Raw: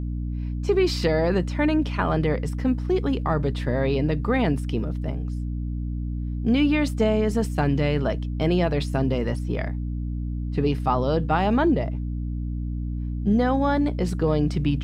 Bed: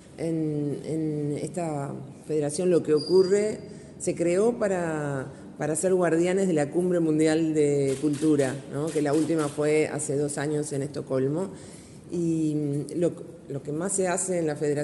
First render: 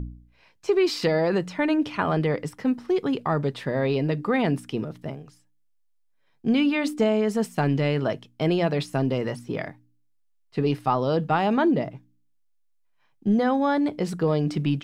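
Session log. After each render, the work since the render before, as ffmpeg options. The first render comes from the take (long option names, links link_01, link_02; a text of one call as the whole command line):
ffmpeg -i in.wav -af "bandreject=frequency=60:width_type=h:width=4,bandreject=frequency=120:width_type=h:width=4,bandreject=frequency=180:width_type=h:width=4,bandreject=frequency=240:width_type=h:width=4,bandreject=frequency=300:width_type=h:width=4" out.wav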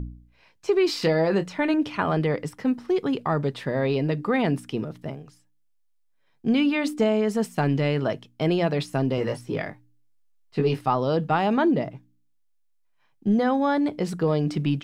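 ffmpeg -i in.wav -filter_complex "[0:a]asettb=1/sr,asplit=3[link_01][link_02][link_03];[link_01]atrim=end=0.864[link_04];[link_02]atrim=start=0.86:end=1.74,asetpts=PTS-STARTPTS,afade=type=in:duration=0.004:curve=qsin,afade=type=out:start_time=0.876:duration=0.004:curve=qsin,asplit=2[link_05][link_06];[link_06]adelay=25,volume=-11dB[link_07];[link_05][link_07]amix=inputs=2:normalize=0,atrim=end_sample=38808[link_08];[link_03]atrim=start=1.736[link_09];[link_04][link_08]acrossfade=duration=0.004:curve1=hsin:curve2=qsin[link_10];[link_10][link_09]acrossfade=duration=0.004:curve1=qsin:curve2=hsin,asettb=1/sr,asplit=3[link_11][link_12][link_13];[link_11]atrim=end=9.164[link_14];[link_12]atrim=start=9.16:end=10.81,asetpts=PTS-STARTPTS,afade=type=in:duration=0.004:curve=qsin,afade=type=out:start_time=1.646:duration=0.004:curve=qsin,asplit=2[link_15][link_16];[link_16]adelay=19,volume=-3.5dB[link_17];[link_15][link_17]amix=inputs=2:normalize=0,atrim=end_sample=72765[link_18];[link_13]atrim=start=10.806[link_19];[link_14][link_18]acrossfade=duration=0.004:curve1=hsin:curve2=qsin[link_20];[link_20][link_19]acrossfade=duration=0.004:curve1=qsin:curve2=hsin" out.wav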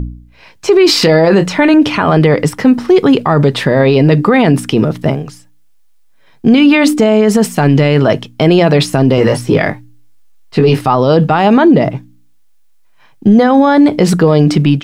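ffmpeg -i in.wav -af "dynaudnorm=framelen=120:gausssize=7:maxgain=7.5dB,alimiter=level_in=13dB:limit=-1dB:release=50:level=0:latency=1" out.wav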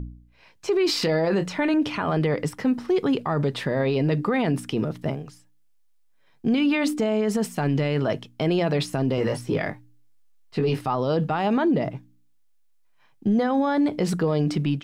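ffmpeg -i in.wav -af "volume=-14dB" out.wav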